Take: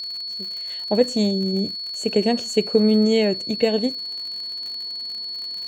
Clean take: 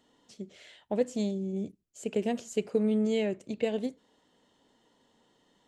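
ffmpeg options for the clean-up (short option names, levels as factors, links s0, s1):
-af "adeclick=t=4,bandreject=f=4400:w=30,asetnsamples=n=441:p=0,asendcmd='0.7 volume volume -10dB',volume=1"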